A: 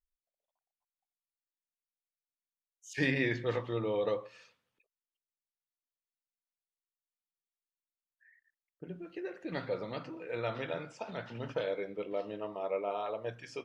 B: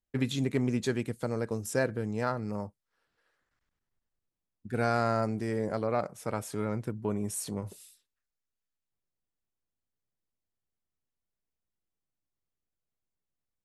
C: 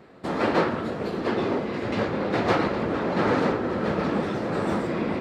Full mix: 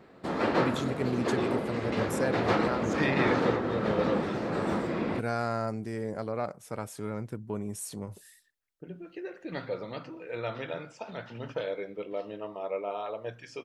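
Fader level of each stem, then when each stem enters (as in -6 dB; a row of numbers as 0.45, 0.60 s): +1.0, -3.0, -4.0 dB; 0.00, 0.45, 0.00 s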